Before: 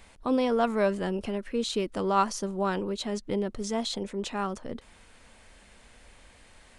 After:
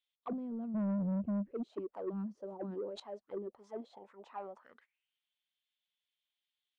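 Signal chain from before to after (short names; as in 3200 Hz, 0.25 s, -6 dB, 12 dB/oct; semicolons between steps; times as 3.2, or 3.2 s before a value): gate -44 dBFS, range -21 dB; HPF 42 Hz 12 dB/oct; 0.74–1.51 tilt -4 dB/oct; auto-wah 200–3400 Hz, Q 6.5, down, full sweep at -22.5 dBFS; soft clip -30.5 dBFS, distortion -8 dB; 2.36–3 sustainer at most 57 dB/s; gain -1 dB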